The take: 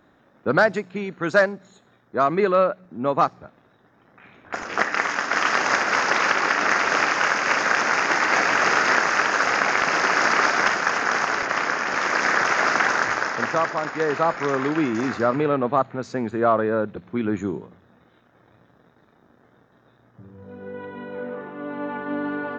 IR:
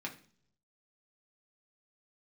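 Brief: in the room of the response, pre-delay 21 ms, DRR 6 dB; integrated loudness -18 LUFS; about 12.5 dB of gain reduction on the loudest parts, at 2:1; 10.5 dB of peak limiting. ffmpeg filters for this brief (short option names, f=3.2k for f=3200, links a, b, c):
-filter_complex "[0:a]acompressor=threshold=-38dB:ratio=2,alimiter=level_in=3dB:limit=-24dB:level=0:latency=1,volume=-3dB,asplit=2[a][b];[1:a]atrim=start_sample=2205,adelay=21[c];[b][c]afir=irnorm=-1:irlink=0,volume=-7dB[d];[a][d]amix=inputs=2:normalize=0,volume=18dB"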